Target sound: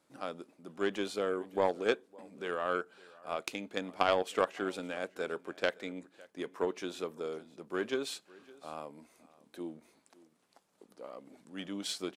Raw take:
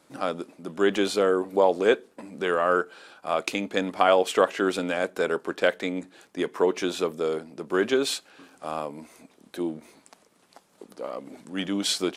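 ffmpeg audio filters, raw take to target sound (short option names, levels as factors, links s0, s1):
-af "aecho=1:1:561:0.0891,aeval=exprs='0.562*(cos(1*acos(clip(val(0)/0.562,-1,1)))-cos(1*PI/2))+0.1*(cos(3*acos(clip(val(0)/0.562,-1,1)))-cos(3*PI/2))+0.00316*(cos(7*acos(clip(val(0)/0.562,-1,1)))-cos(7*PI/2))':c=same,volume=0.562"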